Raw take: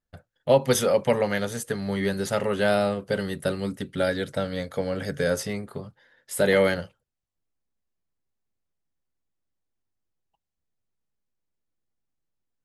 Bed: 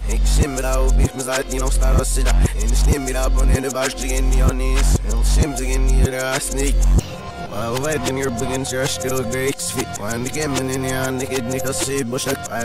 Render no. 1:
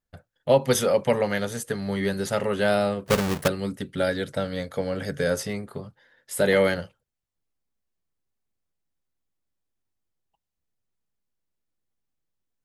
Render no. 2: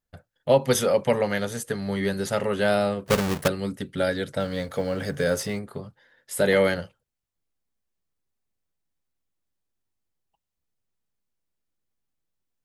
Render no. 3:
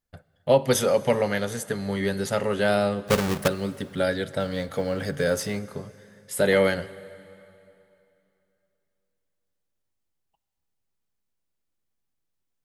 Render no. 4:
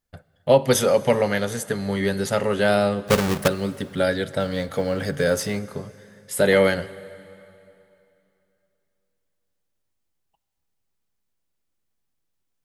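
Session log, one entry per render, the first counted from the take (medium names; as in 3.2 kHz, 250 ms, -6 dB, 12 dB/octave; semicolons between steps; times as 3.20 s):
3.06–3.48 s: square wave that keeps the level
4.40–5.59 s: companding laws mixed up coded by mu
plate-style reverb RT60 2.9 s, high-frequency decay 0.9×, DRR 16.5 dB
trim +3 dB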